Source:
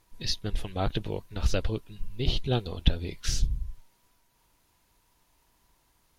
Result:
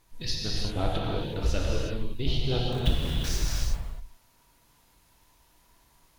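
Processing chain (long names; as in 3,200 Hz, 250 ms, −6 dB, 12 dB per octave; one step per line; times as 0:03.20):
0:02.72–0:03.64: hold until the input has moved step −34 dBFS
in parallel at +0.5 dB: downward compressor, threshold −34 dBFS, peak gain reduction 17.5 dB
on the sum: reverb whose tail is shaped and stops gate 390 ms flat, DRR −3.5 dB
level −6 dB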